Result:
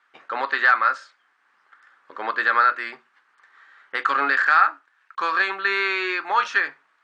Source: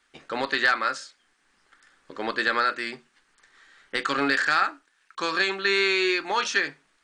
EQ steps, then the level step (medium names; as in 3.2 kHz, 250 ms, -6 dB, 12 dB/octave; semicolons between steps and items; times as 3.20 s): band-pass filter 1.2 kHz, Q 1.5; +7.5 dB